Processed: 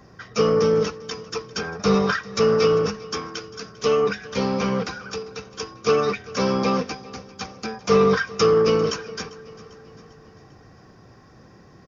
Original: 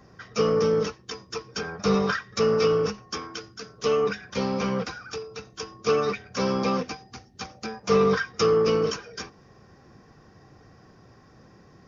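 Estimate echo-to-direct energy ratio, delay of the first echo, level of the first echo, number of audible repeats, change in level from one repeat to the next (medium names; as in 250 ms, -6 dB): -18.5 dB, 397 ms, -20.0 dB, 3, -5.5 dB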